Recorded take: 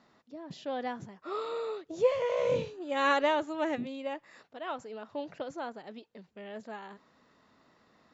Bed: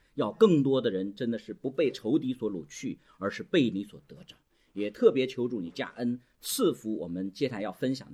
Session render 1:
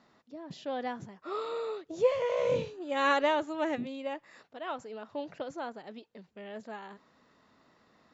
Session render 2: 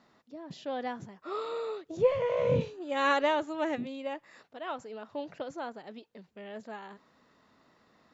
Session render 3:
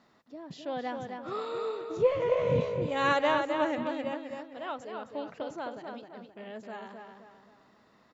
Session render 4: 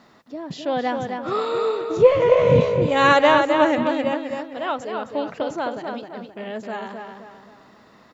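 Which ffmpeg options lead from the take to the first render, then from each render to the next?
-af anull
-filter_complex "[0:a]asettb=1/sr,asplit=3[a][b][c];[a]atrim=end=1.974[d];[b]atrim=start=1.97:end=2.61,asetpts=PTS-STARTPTS,afade=t=in:d=0.004:c=qsin,afade=t=out:st=0.636:d=0.004:c=qsin,bass=f=250:g=12,treble=f=4k:g=-10[e];[c]atrim=start=2.606[f];[d][e]acrossfade=d=0.004:c1=hsin:c2=qsin[g];[g][f]acrossfade=d=0.004:c1=qsin:c2=hsin"
-filter_complex "[0:a]asplit=2[a][b];[b]adelay=262,lowpass=f=3.5k:p=1,volume=-5dB,asplit=2[c][d];[d]adelay=262,lowpass=f=3.5k:p=1,volume=0.42,asplit=2[e][f];[f]adelay=262,lowpass=f=3.5k:p=1,volume=0.42,asplit=2[g][h];[h]adelay=262,lowpass=f=3.5k:p=1,volume=0.42,asplit=2[i][j];[j]adelay=262,lowpass=f=3.5k:p=1,volume=0.42[k];[a][c][e][g][i][k]amix=inputs=6:normalize=0"
-af "volume=11.5dB,alimiter=limit=-2dB:level=0:latency=1"

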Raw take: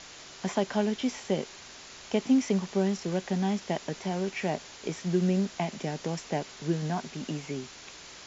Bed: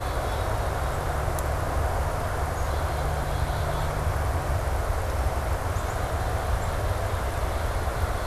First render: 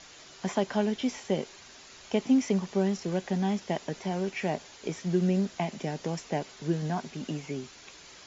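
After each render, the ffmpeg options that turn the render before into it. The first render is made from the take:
-af "afftdn=nr=6:nf=-48"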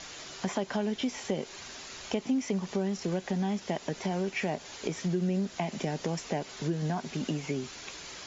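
-filter_complex "[0:a]asplit=2[a][b];[b]alimiter=limit=-23.5dB:level=0:latency=1:release=147,volume=0.5dB[c];[a][c]amix=inputs=2:normalize=0,acompressor=threshold=-30dB:ratio=2.5"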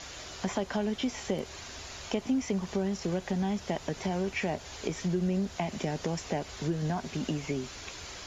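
-filter_complex "[1:a]volume=-24.5dB[a];[0:a][a]amix=inputs=2:normalize=0"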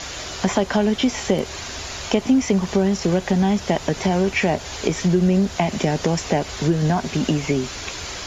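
-af "volume=12dB"

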